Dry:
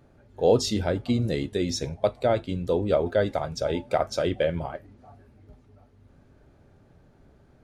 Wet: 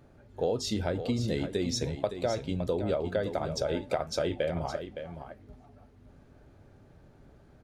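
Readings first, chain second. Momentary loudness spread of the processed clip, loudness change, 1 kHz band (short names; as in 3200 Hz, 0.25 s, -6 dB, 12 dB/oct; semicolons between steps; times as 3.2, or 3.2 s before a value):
11 LU, -5.5 dB, -6.0 dB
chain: compressor 6:1, threshold -26 dBFS, peak gain reduction 11.5 dB; on a send: echo 0.564 s -9.5 dB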